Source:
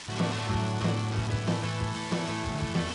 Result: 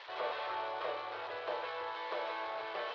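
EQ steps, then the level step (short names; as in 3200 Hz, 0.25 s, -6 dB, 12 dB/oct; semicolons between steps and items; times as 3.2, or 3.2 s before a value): elliptic band-pass 500–4100 Hz, stop band 40 dB; high shelf 2100 Hz -11 dB; 0.0 dB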